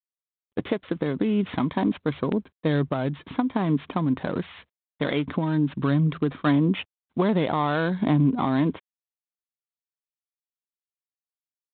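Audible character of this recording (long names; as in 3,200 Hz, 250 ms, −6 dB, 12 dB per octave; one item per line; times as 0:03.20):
a buzz of ramps at a fixed pitch in blocks of 8 samples
G.726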